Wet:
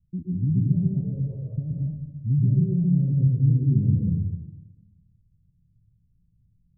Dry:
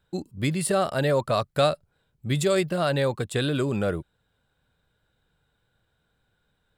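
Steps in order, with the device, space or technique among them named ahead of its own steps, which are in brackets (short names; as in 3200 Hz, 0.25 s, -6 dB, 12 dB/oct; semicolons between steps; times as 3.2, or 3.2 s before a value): 1–1.5 resonant low shelf 330 Hz -9.5 dB, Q 3; club heard from the street (limiter -16 dBFS, peak gain reduction 7 dB; LPF 180 Hz 24 dB/oct; reverb RT60 1.0 s, pre-delay 0.116 s, DRR -3 dB); gain +6 dB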